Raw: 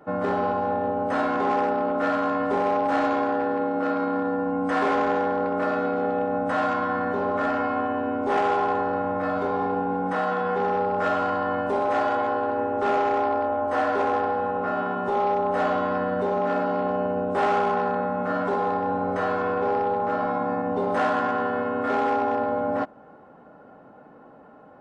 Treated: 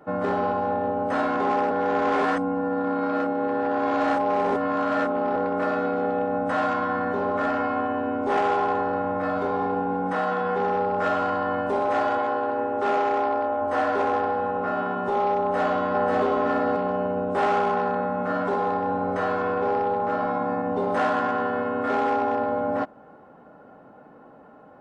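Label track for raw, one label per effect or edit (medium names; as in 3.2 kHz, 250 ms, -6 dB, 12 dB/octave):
1.710000	5.360000	reverse
12.180000	13.610000	bass shelf 100 Hz -11 dB
15.400000	16.220000	echo throw 540 ms, feedback 10%, level -2 dB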